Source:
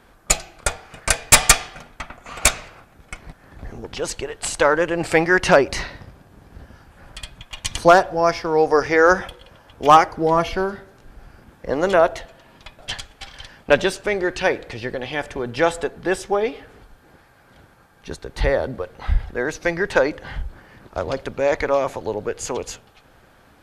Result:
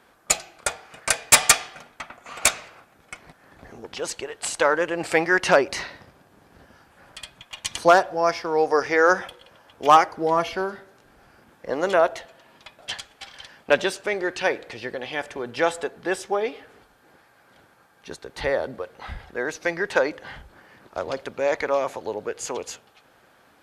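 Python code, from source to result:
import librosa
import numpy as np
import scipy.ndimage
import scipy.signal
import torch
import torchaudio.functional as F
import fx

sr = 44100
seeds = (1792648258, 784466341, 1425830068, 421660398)

y = fx.highpass(x, sr, hz=310.0, slope=6)
y = y * 10.0 ** (-2.5 / 20.0)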